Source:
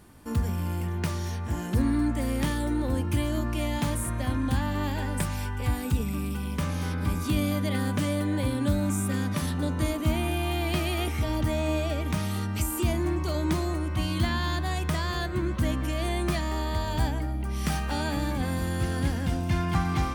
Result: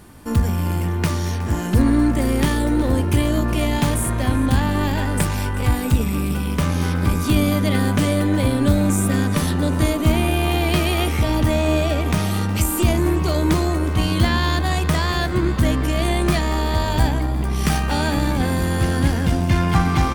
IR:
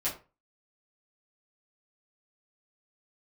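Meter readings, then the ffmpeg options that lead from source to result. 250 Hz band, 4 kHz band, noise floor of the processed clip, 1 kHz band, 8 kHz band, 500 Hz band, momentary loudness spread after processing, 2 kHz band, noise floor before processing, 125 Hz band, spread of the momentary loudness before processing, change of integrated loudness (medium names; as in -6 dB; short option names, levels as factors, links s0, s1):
+9.0 dB, +8.5 dB, -23 dBFS, +9.0 dB, +8.5 dB, +9.0 dB, 4 LU, +9.0 dB, -32 dBFS, +8.5 dB, 4 LU, +8.5 dB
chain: -filter_complex "[0:a]asplit=6[s0][s1][s2][s3][s4][s5];[s1]adelay=366,afreqshift=93,volume=0.141[s6];[s2]adelay=732,afreqshift=186,volume=0.0822[s7];[s3]adelay=1098,afreqshift=279,volume=0.0473[s8];[s4]adelay=1464,afreqshift=372,volume=0.0275[s9];[s5]adelay=1830,afreqshift=465,volume=0.016[s10];[s0][s6][s7][s8][s9][s10]amix=inputs=6:normalize=0,aeval=exprs='0.237*(cos(1*acos(clip(val(0)/0.237,-1,1)))-cos(1*PI/2))+0.0106*(cos(6*acos(clip(val(0)/0.237,-1,1)))-cos(6*PI/2))':c=same,volume=2.66"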